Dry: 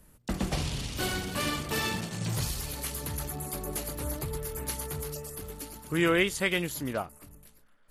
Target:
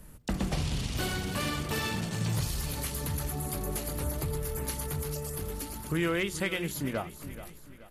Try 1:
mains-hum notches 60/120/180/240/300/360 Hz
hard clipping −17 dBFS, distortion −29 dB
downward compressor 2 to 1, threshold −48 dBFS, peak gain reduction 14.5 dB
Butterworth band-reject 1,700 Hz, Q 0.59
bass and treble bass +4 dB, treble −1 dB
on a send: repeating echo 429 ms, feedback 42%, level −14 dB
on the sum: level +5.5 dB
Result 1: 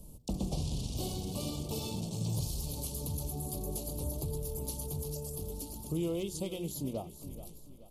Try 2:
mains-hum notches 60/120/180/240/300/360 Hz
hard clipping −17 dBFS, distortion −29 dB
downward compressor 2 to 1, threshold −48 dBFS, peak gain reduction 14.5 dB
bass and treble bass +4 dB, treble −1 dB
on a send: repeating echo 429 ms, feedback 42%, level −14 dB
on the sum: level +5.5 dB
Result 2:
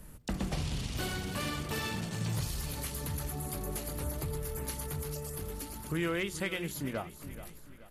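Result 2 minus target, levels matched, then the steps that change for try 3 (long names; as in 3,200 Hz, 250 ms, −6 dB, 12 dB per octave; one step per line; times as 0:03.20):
downward compressor: peak gain reduction +3.5 dB
change: downward compressor 2 to 1, threshold −41 dBFS, peak gain reduction 11 dB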